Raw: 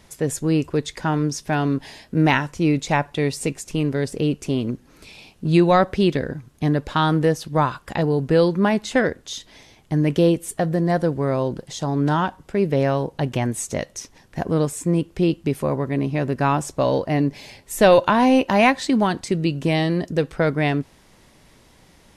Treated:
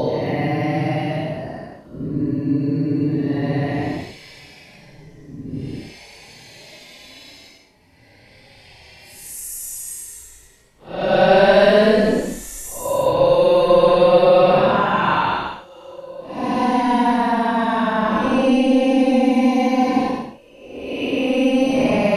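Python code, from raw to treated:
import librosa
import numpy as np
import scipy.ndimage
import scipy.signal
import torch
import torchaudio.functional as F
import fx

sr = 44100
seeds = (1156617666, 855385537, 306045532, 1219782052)

y = fx.local_reverse(x, sr, ms=120.0)
y = fx.paulstretch(y, sr, seeds[0], factor=15.0, window_s=0.05, from_s=17.02)
y = y * librosa.db_to_amplitude(-1.5)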